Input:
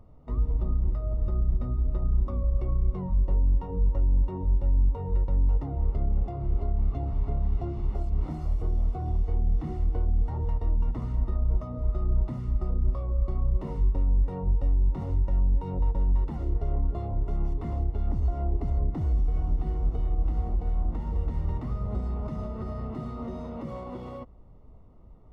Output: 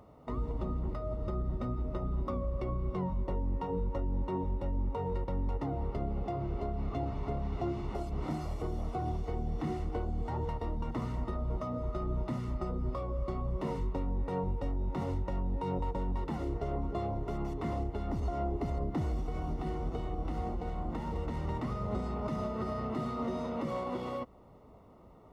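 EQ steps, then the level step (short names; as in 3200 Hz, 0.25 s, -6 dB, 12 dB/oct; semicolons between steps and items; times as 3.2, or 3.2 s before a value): HPF 410 Hz 6 dB/oct; dynamic EQ 740 Hz, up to -3 dB, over -49 dBFS, Q 0.7; +7.5 dB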